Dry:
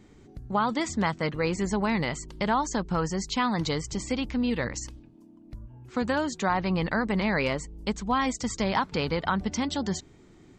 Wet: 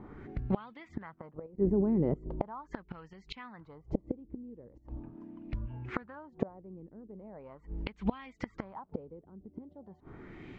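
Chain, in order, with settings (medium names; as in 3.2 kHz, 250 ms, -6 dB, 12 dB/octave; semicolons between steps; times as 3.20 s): 1.46–2.26 s: level held to a coarse grid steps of 17 dB; inverted gate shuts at -22 dBFS, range -29 dB; LFO low-pass sine 0.4 Hz 360–2700 Hz; trim +5 dB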